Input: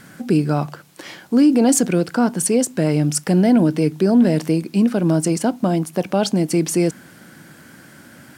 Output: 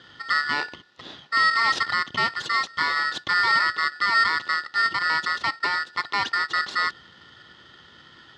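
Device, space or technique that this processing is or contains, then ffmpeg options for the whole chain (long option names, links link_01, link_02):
ring modulator pedal into a guitar cabinet: -filter_complex "[0:a]asettb=1/sr,asplit=3[link_01][link_02][link_03];[link_01]atrim=end=2.714[link_04];[link_02]atrim=start=2.71:end=3.15,asetpts=PTS-STARTPTS,afade=type=in:duration=0.004:curve=qsin,afade=type=out:start_time=0.436:duration=0.004:curve=qsin,asplit=2[link_05][link_06];[link_06]adelay=24,volume=-4.5dB[link_07];[link_05][link_07]amix=inputs=2:normalize=0,atrim=end_sample=19404[link_08];[link_03]atrim=start=3.146[link_09];[link_04][link_08]acrossfade=duration=0.004:curve1=hsin:curve2=qsin[link_10];[link_10][link_09]acrossfade=duration=0.004:curve1=qsin:curve2=hsin,aeval=exprs='val(0)*sgn(sin(2*PI*1600*n/s))':channel_layout=same,highpass=100,equalizer=frequency=340:width_type=q:width=4:gain=5,equalizer=frequency=670:width_type=q:width=4:gain=-4,equalizer=frequency=1300:width_type=q:width=4:gain=-4,equalizer=frequency=2300:width_type=q:width=4:gain=-10,equalizer=frequency=3600:width_type=q:width=4:gain=4,lowpass=frequency=4300:width=0.5412,lowpass=frequency=4300:width=1.3066,volume=-3dB"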